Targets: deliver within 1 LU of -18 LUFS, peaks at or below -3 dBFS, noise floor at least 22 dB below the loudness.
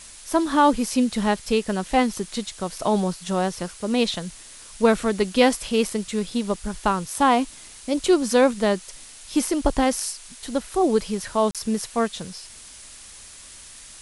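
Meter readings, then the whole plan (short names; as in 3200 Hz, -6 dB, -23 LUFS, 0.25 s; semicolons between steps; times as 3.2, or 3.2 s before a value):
dropouts 1; longest dropout 37 ms; noise floor -44 dBFS; noise floor target -45 dBFS; loudness -23.0 LUFS; peak -4.0 dBFS; loudness target -18.0 LUFS
-> interpolate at 11.51, 37 ms; noise print and reduce 6 dB; gain +5 dB; limiter -3 dBFS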